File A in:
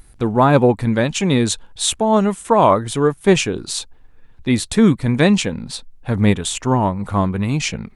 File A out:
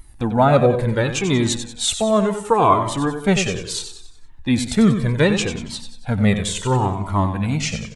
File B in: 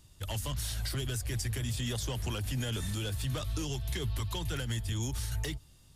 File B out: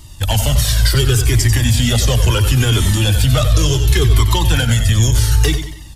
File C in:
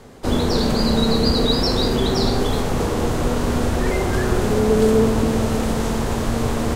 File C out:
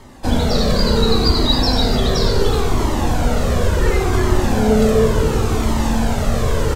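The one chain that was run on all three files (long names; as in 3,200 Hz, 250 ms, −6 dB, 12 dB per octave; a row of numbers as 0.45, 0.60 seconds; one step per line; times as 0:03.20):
dynamic equaliser 9,800 Hz, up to −6 dB, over −49 dBFS, Q 4.7
on a send: repeating echo 93 ms, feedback 45%, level −9 dB
on the sum: flanger whose copies keep moving one way falling 0.7 Hz
normalise the peak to −2 dBFS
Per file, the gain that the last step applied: +3.0, +23.5, +6.5 decibels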